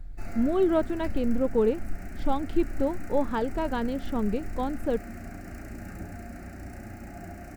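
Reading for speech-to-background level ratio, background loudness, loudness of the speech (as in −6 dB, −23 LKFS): 13.0 dB, −41.5 LKFS, −28.5 LKFS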